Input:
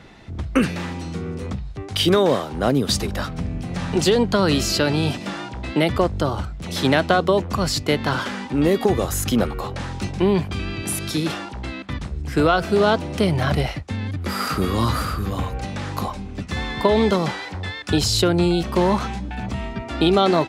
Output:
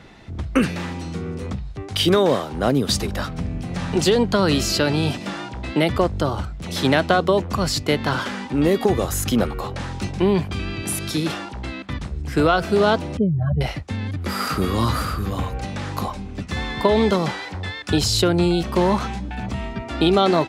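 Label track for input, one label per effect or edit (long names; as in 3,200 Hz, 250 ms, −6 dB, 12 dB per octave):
13.170000	13.610000	expanding power law on the bin magnitudes exponent 2.6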